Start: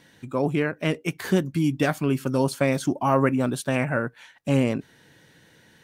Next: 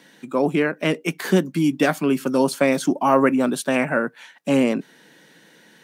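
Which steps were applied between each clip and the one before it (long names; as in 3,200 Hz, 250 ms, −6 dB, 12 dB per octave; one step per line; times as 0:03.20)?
Butterworth high-pass 170 Hz 36 dB per octave
level +4.5 dB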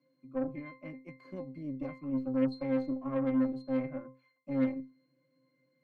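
resonances in every octave C, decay 0.32 s
harmonic generator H 8 −24 dB, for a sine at −13.5 dBFS
level −4.5 dB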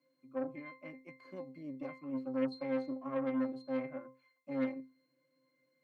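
high-pass filter 440 Hz 6 dB per octave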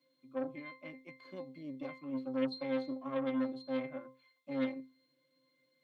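parametric band 3,500 Hz +13.5 dB 0.51 octaves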